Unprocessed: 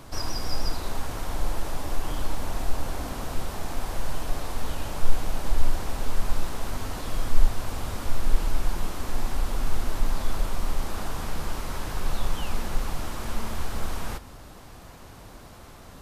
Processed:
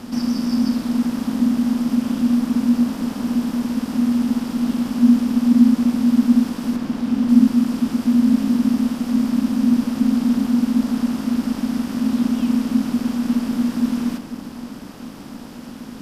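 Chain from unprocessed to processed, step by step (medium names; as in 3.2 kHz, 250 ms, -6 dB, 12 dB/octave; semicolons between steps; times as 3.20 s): spectral levelling over time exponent 0.6; 6.76–7.29 s: treble shelf 5.1 kHz -8.5 dB; filtered feedback delay 247 ms, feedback 71%, level -12 dB; ring modulator 240 Hz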